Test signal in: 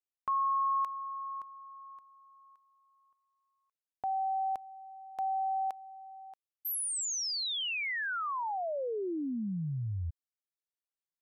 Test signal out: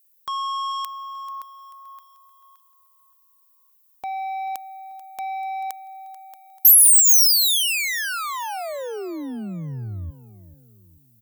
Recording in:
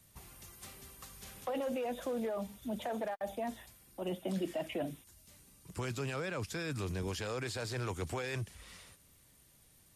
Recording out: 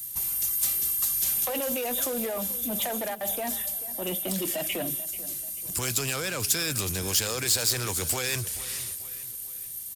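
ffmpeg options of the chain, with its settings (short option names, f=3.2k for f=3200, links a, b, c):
-filter_complex "[0:a]crystalizer=i=3.5:c=0,asplit=2[a][b];[b]adynamicsmooth=sensitivity=6.5:basefreq=5k,volume=1dB[c];[a][c]amix=inputs=2:normalize=0,asoftclip=type=tanh:threshold=-25dB,aemphasis=mode=production:type=75fm,aecho=1:1:438|876|1314|1752:0.158|0.0697|0.0307|0.0135"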